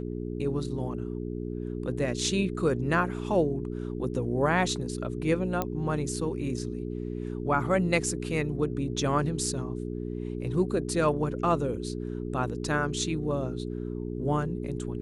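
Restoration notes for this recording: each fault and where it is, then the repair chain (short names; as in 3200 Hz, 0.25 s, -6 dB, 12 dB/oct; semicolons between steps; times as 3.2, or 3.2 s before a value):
hum 60 Hz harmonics 7 -34 dBFS
5.62 pop -14 dBFS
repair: de-click; de-hum 60 Hz, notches 7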